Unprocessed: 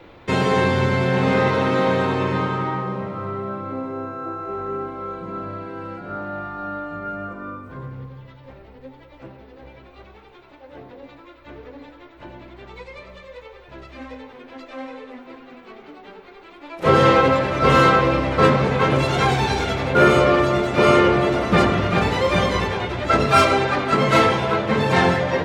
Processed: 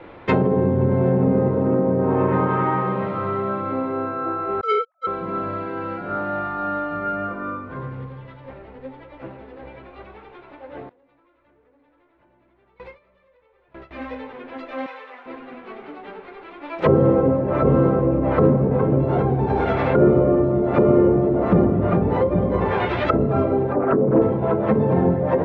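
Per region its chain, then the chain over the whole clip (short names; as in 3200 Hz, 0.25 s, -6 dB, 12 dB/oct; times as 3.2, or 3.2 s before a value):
1.65–3.01 median filter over 9 samples + LPF 4000 Hz
4.61–5.07 sine-wave speech + gate -27 dBFS, range -33 dB + sample leveller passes 3
10.89–13.91 compressor 3:1, threshold -43 dBFS + sample leveller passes 1 + gate with hold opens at -34 dBFS, closes at -38 dBFS
14.86–15.26 zero-crossing step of -53 dBFS + HPF 840 Hz
23.73–24.22 formant sharpening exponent 2 + Doppler distortion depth 0.34 ms
whole clip: low-pass opened by the level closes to 2100 Hz, open at -15.5 dBFS; low shelf 140 Hz -6.5 dB; treble ducked by the level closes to 400 Hz, closed at -16 dBFS; gain +5 dB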